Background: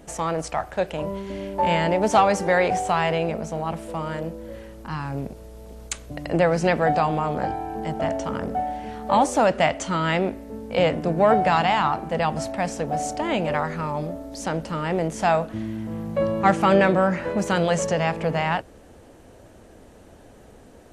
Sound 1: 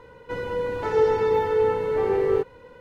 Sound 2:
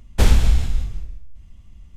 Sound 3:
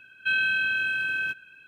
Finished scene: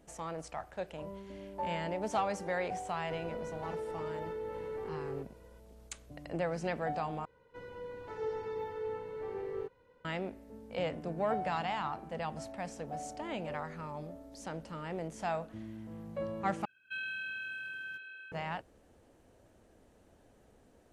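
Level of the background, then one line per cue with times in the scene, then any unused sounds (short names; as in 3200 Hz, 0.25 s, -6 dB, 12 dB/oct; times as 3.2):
background -15 dB
2.8 add 1 -14.5 dB + compressor, threshold -22 dBFS
7.25 replace with 1 -17.5 dB
16.65 replace with 3 -15 dB + delay with a stepping band-pass 0.276 s, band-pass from 500 Hz, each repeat 1.4 oct, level -4 dB
not used: 2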